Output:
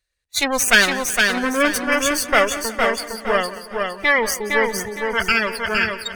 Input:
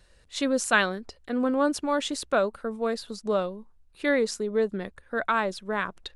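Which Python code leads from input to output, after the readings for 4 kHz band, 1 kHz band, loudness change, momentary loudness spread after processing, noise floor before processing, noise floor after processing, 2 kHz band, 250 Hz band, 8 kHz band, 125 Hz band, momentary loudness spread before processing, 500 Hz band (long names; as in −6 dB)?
+13.0 dB, +7.5 dB, +8.5 dB, 9 LU, −59 dBFS, −62 dBFS, +12.5 dB, +2.5 dB, +14.0 dB, can't be measured, 10 LU, +4.5 dB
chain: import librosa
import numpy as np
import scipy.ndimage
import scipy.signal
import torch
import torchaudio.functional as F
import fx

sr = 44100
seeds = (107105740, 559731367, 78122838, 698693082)

p1 = fx.lower_of_two(x, sr, delay_ms=0.48)
p2 = fx.curve_eq(p1, sr, hz=(100.0, 150.0, 2400.0), db=(0, -8, 9))
p3 = fx.noise_reduce_blind(p2, sr, reduce_db=28)
p4 = 10.0 ** (-16.0 / 20.0) * np.tanh(p3 / 10.0 ** (-16.0 / 20.0))
p5 = p3 + (p4 * librosa.db_to_amplitude(-10.0))
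p6 = fx.echo_feedback(p5, sr, ms=461, feedback_pct=32, wet_db=-4.0)
p7 = fx.echo_warbled(p6, sr, ms=180, feedback_pct=53, rate_hz=2.8, cents=60, wet_db=-17.0)
y = p7 * librosa.db_to_amplitude(3.5)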